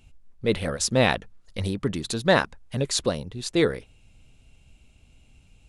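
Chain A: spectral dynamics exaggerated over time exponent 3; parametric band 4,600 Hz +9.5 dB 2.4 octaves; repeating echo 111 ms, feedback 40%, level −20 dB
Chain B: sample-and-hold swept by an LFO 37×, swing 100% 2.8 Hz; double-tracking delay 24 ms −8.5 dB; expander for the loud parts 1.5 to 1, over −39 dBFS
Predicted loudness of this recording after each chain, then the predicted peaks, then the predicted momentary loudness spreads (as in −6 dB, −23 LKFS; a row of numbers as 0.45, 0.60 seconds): −25.5, −27.0 LKFS; −6.0, −8.0 dBFS; 16, 14 LU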